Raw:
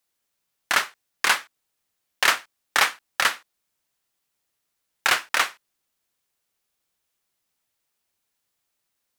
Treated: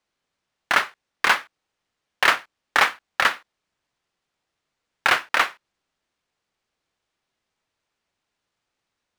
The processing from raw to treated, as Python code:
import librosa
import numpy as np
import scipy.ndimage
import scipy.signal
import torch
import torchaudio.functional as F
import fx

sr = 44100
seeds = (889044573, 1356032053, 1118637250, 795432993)

y = fx.high_shelf(x, sr, hz=4400.0, db=-9.5)
y = np.interp(np.arange(len(y)), np.arange(len(y))[::3], y[::3])
y = y * librosa.db_to_amplitude(4.0)